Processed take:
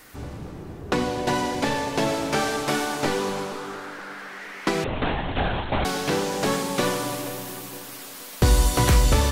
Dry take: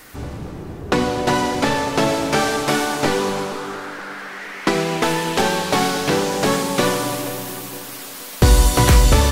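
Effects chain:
0:01.02–0:02.05: notch filter 1,300 Hz, Q 8.6
0:04.84–0:05.85: linear-prediction vocoder at 8 kHz whisper
level −5.5 dB

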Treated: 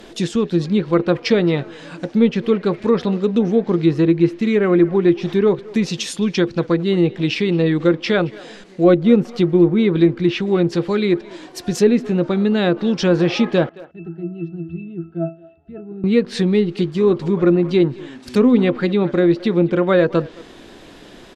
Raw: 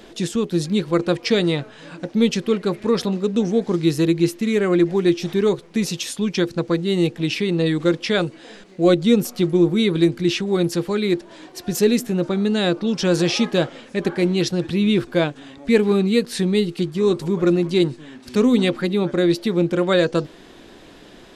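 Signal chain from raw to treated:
treble cut that deepens with the level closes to 2,000 Hz, closed at −14 dBFS
0:13.69–0:16.04: resonances in every octave E, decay 0.27 s
far-end echo of a speakerphone 220 ms, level −19 dB
level +3 dB

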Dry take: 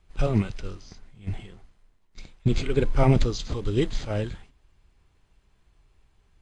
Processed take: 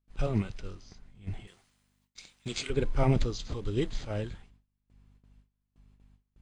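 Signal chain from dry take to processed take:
mains hum 50 Hz, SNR 27 dB
noise gate with hold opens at −45 dBFS
0:01.47–0:02.70: spectral tilt +4 dB per octave
level −6 dB

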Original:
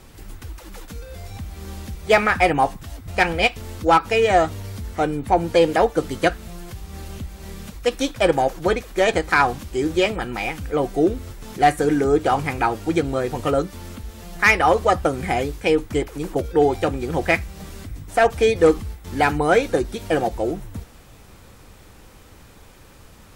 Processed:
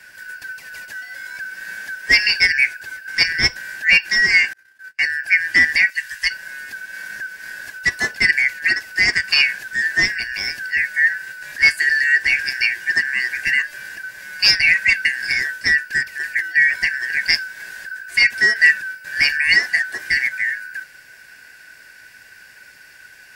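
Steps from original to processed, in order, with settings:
band-splitting scrambler in four parts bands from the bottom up 3142
0:04.53–0:05.16: noise gate −28 dBFS, range −36 dB
0:05.90–0:06.31: guitar amp tone stack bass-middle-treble 10-0-10
level +1.5 dB

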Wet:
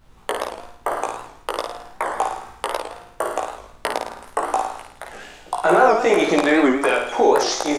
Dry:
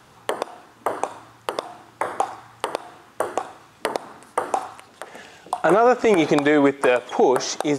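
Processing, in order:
high-pass filter 370 Hz 6 dB per octave
downward expander −44 dBFS
background noise brown −51 dBFS
double-tracking delay 17 ms −3 dB
on a send: flutter between parallel walls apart 9.2 metres, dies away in 0.65 s
on the sum: wow of a warped record 78 rpm, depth 160 cents

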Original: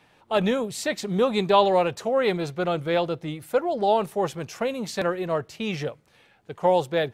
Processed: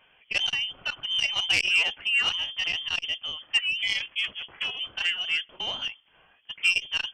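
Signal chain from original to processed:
0:03.81–0:04.79: ring modulation 510 Hz → 150 Hz
voice inversion scrambler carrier 3,300 Hz
saturating transformer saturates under 3,400 Hz
level −1.5 dB

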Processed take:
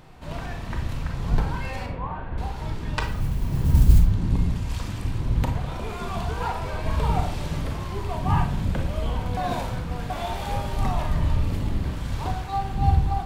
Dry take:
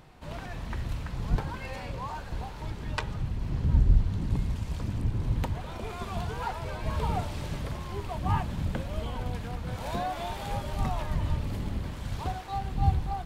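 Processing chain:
0:01.86–0:02.38: Bessel low-pass filter 1,900 Hz, order 8
0:03.00–0:04.00: noise that follows the level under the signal 26 dB
0:04.69–0:05.20: tilt shelving filter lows −5.5 dB, about 790 Hz
0:09.37–0:10.10: reverse
convolution reverb RT60 0.50 s, pre-delay 29 ms, DRR 4 dB
level +3.5 dB

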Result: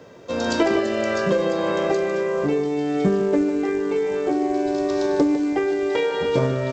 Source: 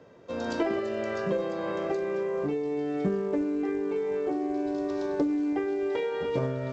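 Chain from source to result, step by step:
high-shelf EQ 3,800 Hz +9 dB
on a send: single-tap delay 151 ms −10.5 dB
on the sum: level +8 dB

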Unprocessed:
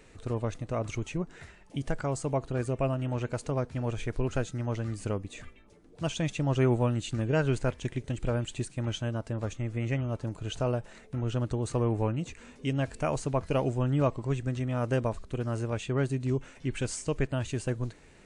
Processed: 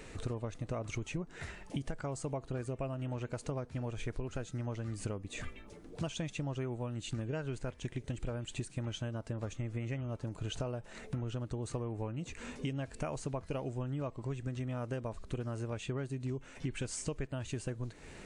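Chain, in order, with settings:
downward compressor 12 to 1, threshold −40 dBFS, peak gain reduction 20.5 dB
level +6 dB

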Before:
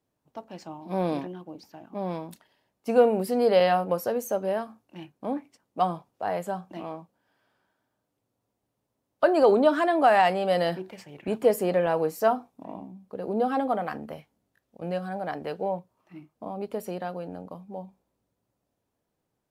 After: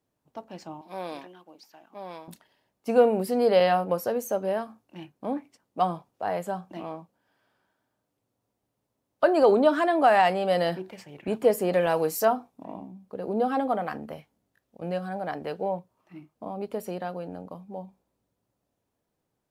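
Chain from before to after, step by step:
0:00.81–0:02.28: high-pass filter 1,200 Hz 6 dB per octave
0:11.73–0:12.25: high-shelf EQ 2,900 Hz +10.5 dB

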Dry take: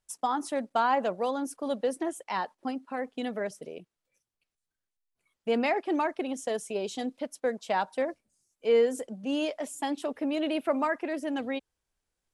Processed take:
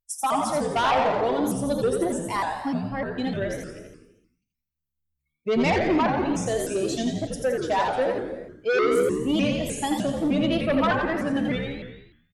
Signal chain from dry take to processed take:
spectral dynamics exaggerated over time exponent 1.5
reverb whose tail is shaped and stops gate 450 ms falling, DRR 6 dB
in parallel at −9.5 dB: sine wavefolder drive 13 dB, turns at −12 dBFS
on the sum: echo with shifted repeats 85 ms, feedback 49%, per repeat −73 Hz, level −4.5 dB
pitch modulation by a square or saw wave saw up 3.3 Hz, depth 160 cents
level −2 dB

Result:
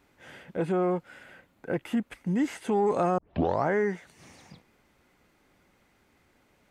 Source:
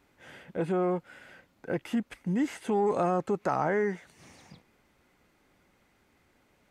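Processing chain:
0:01.23–0:02.14: parametric band 5,300 Hz −5.5 dB 0.77 octaves
0:03.18: tape start 0.48 s
level +1.5 dB

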